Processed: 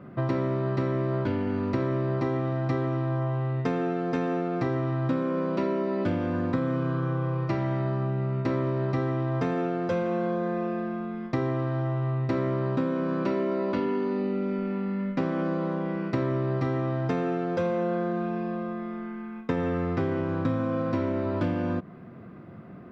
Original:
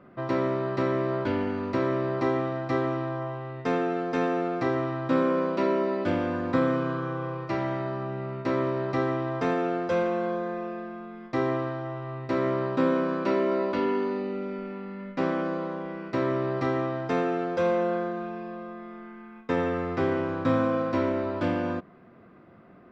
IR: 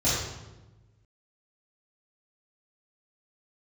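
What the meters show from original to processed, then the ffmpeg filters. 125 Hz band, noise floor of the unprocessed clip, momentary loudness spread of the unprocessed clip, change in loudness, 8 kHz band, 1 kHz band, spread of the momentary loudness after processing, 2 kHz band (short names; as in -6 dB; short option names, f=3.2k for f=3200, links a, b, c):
+6.5 dB, -52 dBFS, 10 LU, 0.0 dB, n/a, -3.0 dB, 4 LU, -3.5 dB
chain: -af "equalizer=f=130:w=0.72:g=10,acompressor=threshold=-27dB:ratio=6,volume=3dB"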